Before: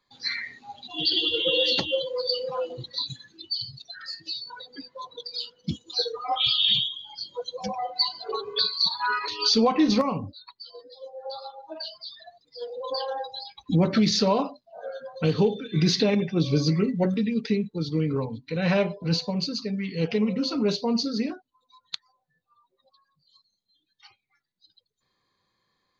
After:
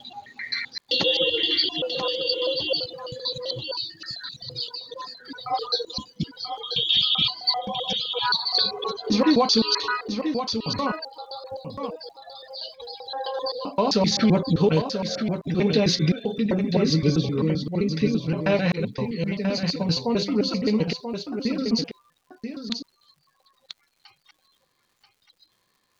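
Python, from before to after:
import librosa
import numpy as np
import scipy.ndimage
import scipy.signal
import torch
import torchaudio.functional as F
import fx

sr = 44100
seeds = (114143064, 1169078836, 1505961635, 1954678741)

y = fx.block_reorder(x, sr, ms=130.0, group=7)
y = fx.dmg_crackle(y, sr, seeds[0], per_s=200.0, level_db=-55.0)
y = y + 10.0 ** (-7.5 / 20.0) * np.pad(y, (int(985 * sr / 1000.0), 0))[:len(y)]
y = y * librosa.db_to_amplitude(1.5)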